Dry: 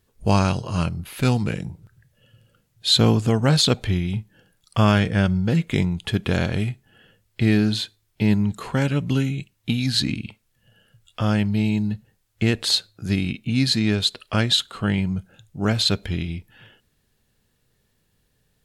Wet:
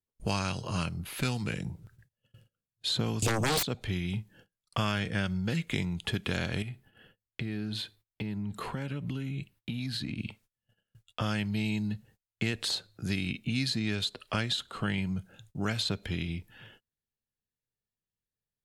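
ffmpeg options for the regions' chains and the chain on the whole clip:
-filter_complex "[0:a]asettb=1/sr,asplit=3[s0][s1][s2];[s0]atrim=end=3.224[s3];[s1]atrim=start=3.22:end=3.63,asetpts=PTS-STARTPTS,afade=t=in:d=0.004:c=qsin,afade=t=out:st=0.406:d=0.004:c=qsin,asuperstop=centerf=1400:order=12:qfactor=1,acrossover=split=200|3000[s4][s5][s6];[s5]acompressor=threshold=0.0631:ratio=2.5:attack=3.2:release=140:knee=2.83:detection=peak[s7];[s4][s7][s6]amix=inputs=3:normalize=0,aeval=exprs='0.447*sin(PI/2*6.31*val(0)/0.447)':c=same[s8];[s2]atrim=start=3.626[s9];[s3][s8]acrossfade=d=0.004:c1=hsin:c2=qsin[s10];[s10][s9]acrossfade=d=0.004:c1=qsin:c2=hsin,asettb=1/sr,asplit=3[s11][s12][s13];[s11]atrim=end=6.624[s14];[s12]atrim=start=6.62:end=10.19,asetpts=PTS-STARTPTS,afade=t=in:d=0.004:c=qsin,afade=t=out:st=3.566:d=0.004:c=qsin,equalizer=f=6700:w=1.4:g=-7.5,acompressor=threshold=0.0398:ratio=6:attack=3.2:release=140:knee=1:detection=peak[s15];[s13]atrim=start=10.186[s16];[s14][s15]acrossfade=d=0.004:c1=hsin:c2=qsin[s17];[s17][s16]acrossfade=d=0.004:c1=qsin:c2=hsin,acrossover=split=110|1400[s18][s19][s20];[s18]acompressor=threshold=0.0112:ratio=4[s21];[s19]acompressor=threshold=0.0355:ratio=4[s22];[s20]acompressor=threshold=0.0355:ratio=4[s23];[s21][s22][s23]amix=inputs=3:normalize=0,agate=range=0.0501:threshold=0.002:ratio=16:detection=peak,volume=0.75"

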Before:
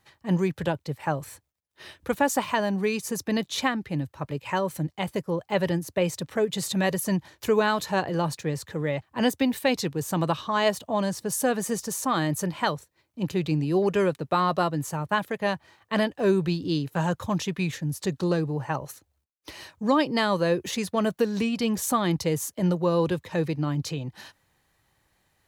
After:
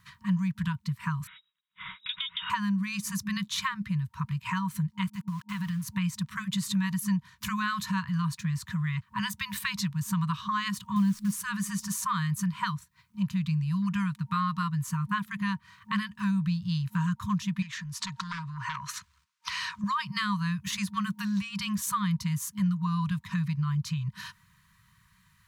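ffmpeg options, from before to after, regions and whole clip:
-filter_complex "[0:a]asettb=1/sr,asplit=3[s0][s1][s2];[s0]atrim=end=1.274[s3];[s1]atrim=start=1.27:end=2.5,asetpts=PTS-STARTPTS,afade=t=in:d=0.004:c=qsin,afade=t=out:st=1.226:d=0.004:c=qsin,lowpass=f=3300:t=q:w=0.5098,lowpass=f=3300:t=q:w=0.6013,lowpass=f=3300:t=q:w=0.9,lowpass=f=3300:t=q:w=2.563,afreqshift=-3900,acompressor=threshold=0.0282:ratio=6:attack=3.2:release=140:knee=1:detection=peak[s4];[s2]atrim=start=2.496[s5];[s3][s4]acrossfade=d=0.004:c1=hsin:c2=qsin[s6];[s6][s5]acrossfade=d=0.004:c1=qsin:c2=hsin,asettb=1/sr,asplit=3[s7][s8][s9];[s7]atrim=end=5.064[s10];[s8]atrim=start=5.06:end=5.84,asetpts=PTS-STARTPTS,afade=t=in:d=0.004:c=qsin,afade=t=out:st=0.776:d=0.004:c=qsin,lowshelf=f=70:g=-7.5,acompressor=threshold=0.0282:ratio=5:attack=3.2:release=140:knee=1:detection=peak,aeval=exprs='val(0)*gte(abs(val(0)),0.00501)':c=same[s11];[s9]atrim=start=5.836[s12];[s10][s11]acrossfade=d=0.004:c1=hsin:c2=qsin[s13];[s13][s12]acrossfade=d=0.004:c1=qsin:c2=hsin,asettb=1/sr,asplit=3[s14][s15][s16];[s14]atrim=end=10.964[s17];[s15]atrim=start=10.96:end=11.42,asetpts=PTS-STARTPTS,afade=t=in:d=0.004:c=qsin,afade=t=out:st=0.456:d=0.004:c=qsin,highpass=54,equalizer=f=220:t=o:w=0.69:g=11,acrusher=bits=7:dc=4:mix=0:aa=0.000001[s18];[s16]atrim=start=11.416[s19];[s17][s18]acrossfade=d=0.004:c1=hsin:c2=qsin[s20];[s20][s19]acrossfade=d=0.004:c1=qsin:c2=hsin,asettb=1/sr,asplit=3[s21][s22][s23];[s21]atrim=end=17.624[s24];[s22]atrim=start=17.62:end=19.84,asetpts=PTS-STARTPTS,afade=t=in:d=0.004:c=qsin,afade=t=out:st=2.216:d=0.004:c=qsin,aeval=exprs='0.251*sin(PI/2*2.82*val(0)/0.251)':c=same,acompressor=threshold=0.0316:ratio=8:attack=3.2:release=140:knee=1:detection=peak,acrossover=split=510 7600:gain=0.178 1 0.141[s25][s26][s27];[s25][s26][s27]amix=inputs=3:normalize=0[s28];[s23]atrim=start=19.836[s29];[s24][s28]acrossfade=d=0.004:c1=hsin:c2=qsin[s30];[s30][s29]acrossfade=d=0.004:c1=qsin:c2=hsin,afftfilt=real='re*(1-between(b*sr/4096,210,930))':imag='im*(1-between(b*sr/4096,210,930))':win_size=4096:overlap=0.75,equalizer=f=330:w=0.4:g=10.5,acompressor=threshold=0.0178:ratio=2.5,volume=1.5"

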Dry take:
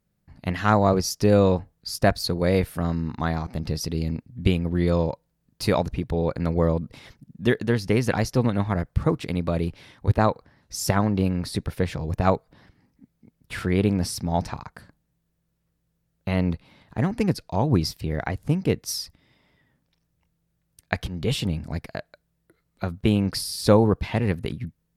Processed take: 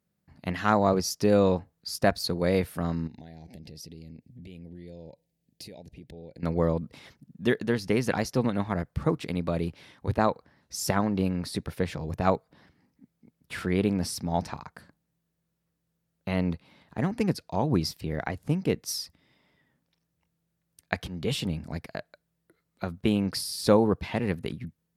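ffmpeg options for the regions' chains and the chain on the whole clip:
-filter_complex "[0:a]asettb=1/sr,asplit=3[s0][s1][s2];[s0]atrim=end=3.074[s3];[s1]atrim=start=3.07:end=6.43,asetpts=PTS-STARTPTS,afade=t=in:d=0.004:c=qsin,afade=t=out:st=3.356:d=0.004:c=qsin,acompressor=threshold=0.0158:ratio=12:attack=3.2:release=140:knee=1:detection=peak,asuperstop=centerf=1200:order=4:qfactor=1[s4];[s2]atrim=start=6.426[s5];[s3][s4]acrossfade=d=0.004:c1=hsin:c2=qsin[s6];[s6][s5]acrossfade=d=0.004:c1=qsin:c2=hsin,highpass=83,equalizer=f=110:w=4.2:g=-7,volume=0.708"

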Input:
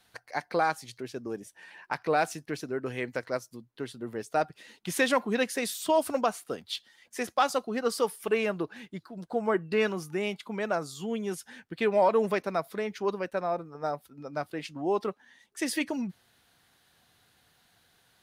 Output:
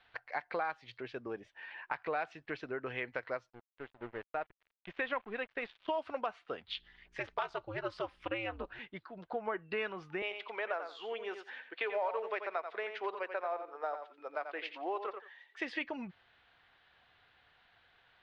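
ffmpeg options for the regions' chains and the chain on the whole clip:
-filter_complex "[0:a]asettb=1/sr,asplit=3[s0][s1][s2];[s0]atrim=end=3.504[s3];[s1]atrim=start=3.5:end=5.88,asetpts=PTS-STARTPTS,afade=t=in:d=0.004:c=qsin,afade=t=out:st=2.376:d=0.004:c=qsin,lowpass=3100,aeval=exprs='sgn(val(0))*max(abs(val(0))-0.00562,0)':c=same,tremolo=f=1.8:d=0.46[s4];[s2]atrim=start=5.876[s5];[s3][s4]acrossfade=d=0.004:c1=hsin:c2=qsin[s6];[s6][s5]acrossfade=d=0.004:c1=qsin:c2=hsin,asettb=1/sr,asplit=3[s7][s8][s9];[s7]atrim=end=6.684[s10];[s8]atrim=start=6.68:end=8.79,asetpts=PTS-STARTPTS,afade=t=in:d=0.004:c=qsin,afade=t=out:st=2.106:d=0.004:c=qsin,equalizer=f=13000:w=0.51:g=6,aeval=exprs='val(0)+0.000891*(sin(2*PI*60*n/s)+sin(2*PI*2*60*n/s)/2+sin(2*PI*3*60*n/s)/3+sin(2*PI*4*60*n/s)/4+sin(2*PI*5*60*n/s)/5)':c=same,aeval=exprs='val(0)*sin(2*PI*110*n/s)':c=same[s11];[s9]atrim=start=8.786[s12];[s10][s11]acrossfade=d=0.004:c1=hsin:c2=qsin[s13];[s13][s12]acrossfade=d=0.004:c1=qsin:c2=hsin,asettb=1/sr,asplit=3[s14][s15][s16];[s14]atrim=end=10.224[s17];[s15]atrim=start=10.22:end=15.6,asetpts=PTS-STARTPTS,afade=t=in:d=0.004:c=qsin,afade=t=out:st=5.376:d=0.004:c=qsin,highpass=f=370:w=0.5412,highpass=f=370:w=1.3066,acrusher=bits=7:mode=log:mix=0:aa=0.000001,aecho=1:1:87|174:0.335|0.0502,atrim=end_sample=237258[s18];[s16]atrim=start=15.596[s19];[s17][s18]acrossfade=d=0.004:c1=hsin:c2=qsin[s20];[s20][s19]acrossfade=d=0.004:c1=qsin:c2=hsin,lowpass=f=3100:w=0.5412,lowpass=f=3100:w=1.3066,equalizer=f=190:t=o:w=2.4:g=-13.5,acompressor=threshold=0.0126:ratio=3,volume=1.41"

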